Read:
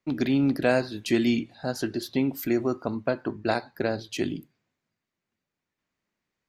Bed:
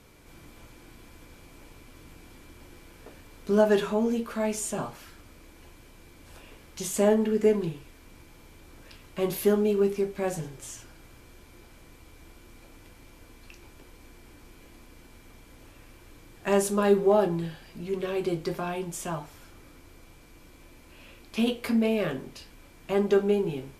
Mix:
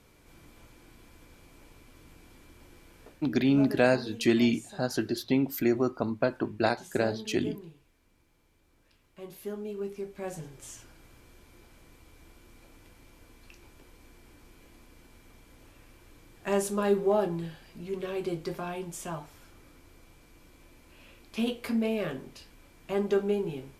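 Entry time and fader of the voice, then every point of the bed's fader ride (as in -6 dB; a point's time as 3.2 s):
3.15 s, -0.5 dB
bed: 3.07 s -4.5 dB
3.38 s -16.5 dB
9.29 s -16.5 dB
10.68 s -4 dB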